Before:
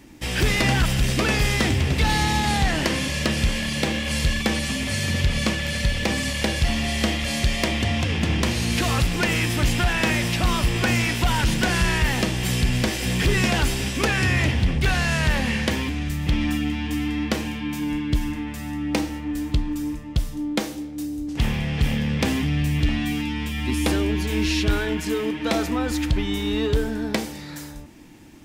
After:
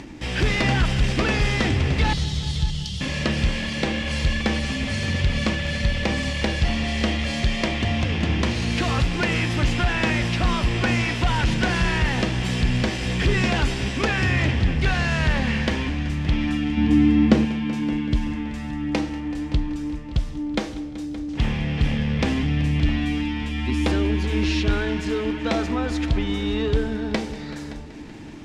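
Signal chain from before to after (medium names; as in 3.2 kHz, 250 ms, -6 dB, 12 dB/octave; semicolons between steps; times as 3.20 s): 2.13–3.01 s: Chebyshev band-stop 180–3100 Hz, order 5; 16.77–17.45 s: peaking EQ 200 Hz +10.5 dB 2.9 oct; upward compressor, threshold -30 dBFS; distance through air 90 m; multi-head delay 190 ms, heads all three, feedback 45%, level -19.5 dB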